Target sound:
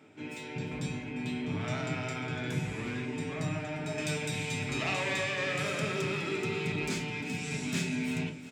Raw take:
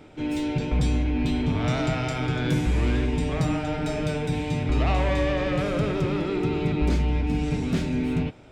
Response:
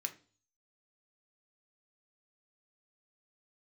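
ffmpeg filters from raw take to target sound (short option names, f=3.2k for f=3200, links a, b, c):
-filter_complex "[0:a]asetnsamples=n=441:p=0,asendcmd='3.98 highshelf g 10.5',highshelf=f=2.5k:g=-3,aecho=1:1:351|702|1053|1404:0.158|0.0745|0.035|0.0165[a];[1:a]atrim=start_sample=2205[b];[a][b]afir=irnorm=-1:irlink=0,volume=-4.5dB"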